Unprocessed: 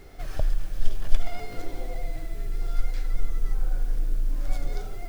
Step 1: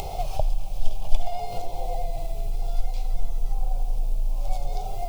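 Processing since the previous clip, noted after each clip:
upward compression, threshold −19 dBFS
drawn EQ curve 170 Hz 0 dB, 260 Hz −15 dB, 810 Hz +12 dB, 1,700 Hz −23 dB, 2,500 Hz +1 dB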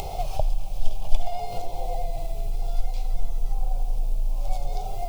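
no processing that can be heard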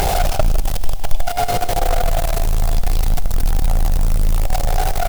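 bit-depth reduction 8 bits, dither triangular
in parallel at −3 dB: fuzz pedal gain 39 dB, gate −39 dBFS
on the sum: single-tap delay 158 ms −13 dB
level +1.5 dB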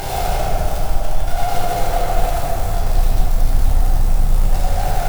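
dense smooth reverb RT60 4 s, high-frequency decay 0.45×, DRR −8.5 dB
level −9.5 dB

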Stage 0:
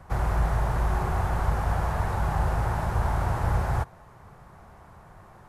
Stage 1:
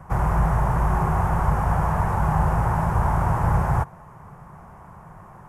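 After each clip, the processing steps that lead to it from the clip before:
graphic EQ with 15 bands 160 Hz +8 dB, 1,000 Hz +6 dB, 4,000 Hz −12 dB
level +2.5 dB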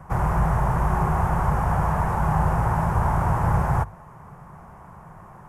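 mains-hum notches 50/100 Hz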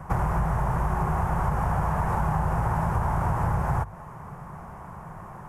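downward compressor, threshold −25 dBFS, peak gain reduction 9 dB
level +3.5 dB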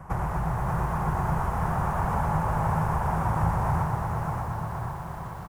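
on a send: bouncing-ball delay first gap 580 ms, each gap 0.85×, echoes 5
on the sum: feedback echo at a low word length 121 ms, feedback 80%, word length 8 bits, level −8 dB
level −3.5 dB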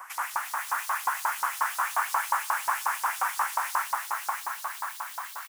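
spectral tilt +4 dB per octave
auto-filter high-pass saw up 5.6 Hz 900–4,900 Hz
level +1.5 dB

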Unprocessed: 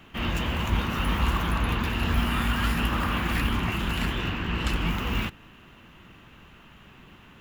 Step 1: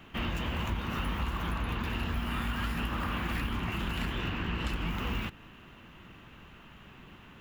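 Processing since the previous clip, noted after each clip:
downward compressor, threshold −28 dBFS, peak gain reduction 9.5 dB
parametric band 9,400 Hz −3 dB 2 octaves
level −1 dB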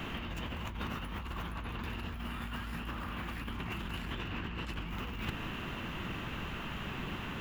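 compressor whose output falls as the input rises −42 dBFS, ratio −1
level +3.5 dB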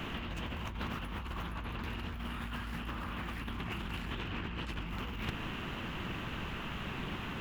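highs frequency-modulated by the lows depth 0.31 ms

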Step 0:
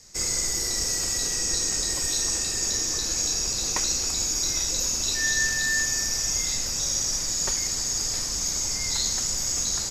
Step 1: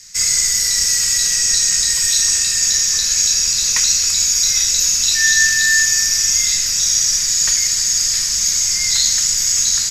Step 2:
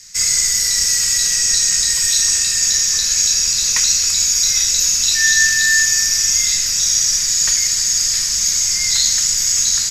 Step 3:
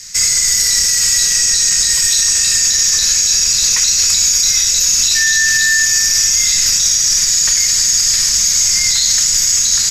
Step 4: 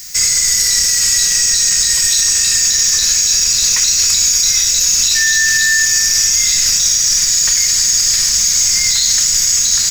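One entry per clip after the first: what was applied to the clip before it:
drawn EQ curve 220 Hz 0 dB, 310 Hz −28 dB, 450 Hz −4 dB, 670 Hz −10 dB, 1,800 Hz +11 dB
no processing that can be heard
brickwall limiter −11.5 dBFS, peak gain reduction 9.5 dB; level +8 dB
background noise violet −36 dBFS

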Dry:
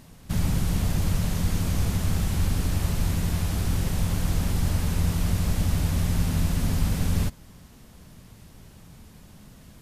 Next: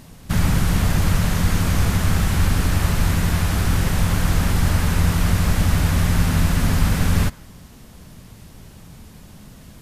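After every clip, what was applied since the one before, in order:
dynamic equaliser 1,500 Hz, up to +7 dB, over −53 dBFS, Q 0.89
level +6 dB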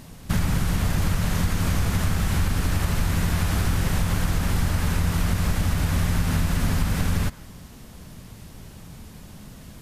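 downward compressor, threshold −18 dBFS, peak gain reduction 7.5 dB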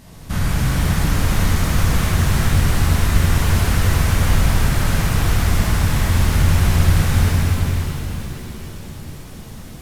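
reverb with rising layers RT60 3.9 s, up +7 semitones, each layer −8 dB, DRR −8 dB
level −2.5 dB

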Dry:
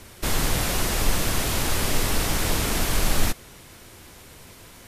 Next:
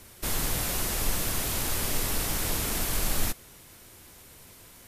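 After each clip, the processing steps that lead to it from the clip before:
high-shelf EQ 9,000 Hz +10 dB
level −7 dB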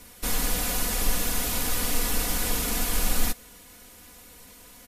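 comb filter 4.1 ms, depth 76%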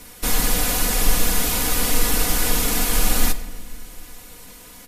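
rectangular room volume 1,400 cubic metres, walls mixed, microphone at 0.5 metres
level +6 dB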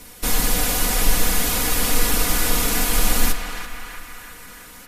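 feedback echo with a band-pass in the loop 334 ms, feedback 68%, band-pass 1,600 Hz, level −5 dB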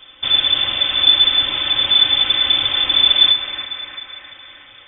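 voice inversion scrambler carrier 3,500 Hz

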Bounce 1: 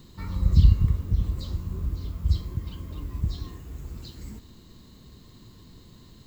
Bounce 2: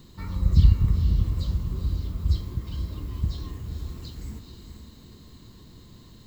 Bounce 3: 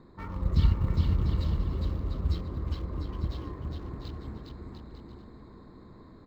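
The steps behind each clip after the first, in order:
feedback delay with all-pass diffusion 461 ms, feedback 44%, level −7 dB
adaptive Wiener filter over 15 samples; bass and treble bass −11 dB, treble −12 dB; bouncing-ball delay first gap 410 ms, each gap 0.7×, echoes 5; level +4 dB

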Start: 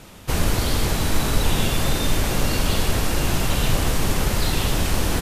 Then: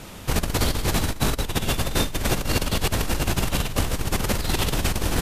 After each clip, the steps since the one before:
compressor whose output falls as the input rises −22 dBFS, ratio −0.5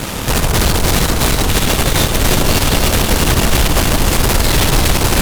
fuzz pedal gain 34 dB, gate −43 dBFS
delay that swaps between a low-pass and a high-pass 162 ms, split 1,400 Hz, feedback 82%, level −5 dB
level +1.5 dB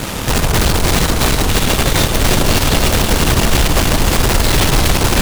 stylus tracing distortion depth 0.038 ms

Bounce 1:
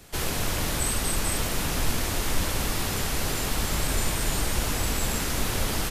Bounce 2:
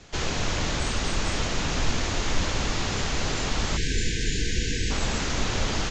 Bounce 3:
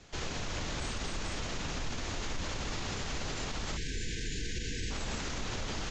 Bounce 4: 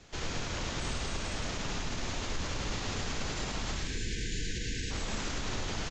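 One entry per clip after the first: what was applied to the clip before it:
elliptic low-pass filter 6,900 Hz, stop band 40 dB; time-frequency box erased 0:03.77–0:04.90, 500–1,500 Hz; level +2 dB
brickwall limiter −20.5 dBFS, peak gain reduction 9 dB; level −6.5 dB
repeating echo 106 ms, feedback 31%, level −4.5 dB

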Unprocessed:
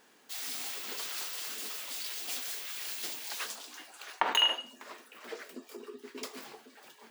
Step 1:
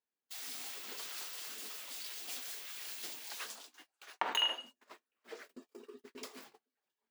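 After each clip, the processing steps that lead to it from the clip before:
noise gate −46 dBFS, range −30 dB
level −6 dB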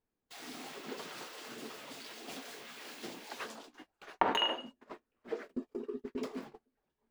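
spectral tilt −4.5 dB per octave
level +6 dB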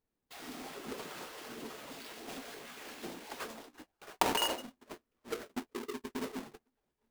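each half-wave held at its own peak
level −4 dB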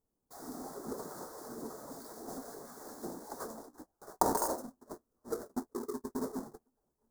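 Butterworth band-reject 2,700 Hz, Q 0.55
level +2.5 dB

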